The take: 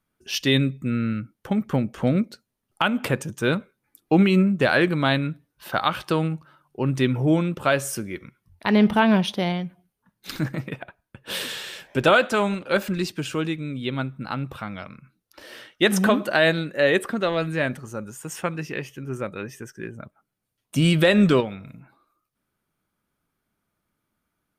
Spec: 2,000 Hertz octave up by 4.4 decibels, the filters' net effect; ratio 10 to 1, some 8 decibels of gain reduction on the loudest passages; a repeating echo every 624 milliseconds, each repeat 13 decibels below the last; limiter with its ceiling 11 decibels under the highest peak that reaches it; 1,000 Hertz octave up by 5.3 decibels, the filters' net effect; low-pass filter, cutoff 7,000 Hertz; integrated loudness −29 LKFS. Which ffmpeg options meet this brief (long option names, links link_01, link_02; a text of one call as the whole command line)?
ffmpeg -i in.wav -af "lowpass=7000,equalizer=frequency=1000:width_type=o:gain=6,equalizer=frequency=2000:width_type=o:gain=3.5,acompressor=threshold=-18dB:ratio=10,alimiter=limit=-15.5dB:level=0:latency=1,aecho=1:1:624|1248|1872:0.224|0.0493|0.0108,volume=-1.5dB" out.wav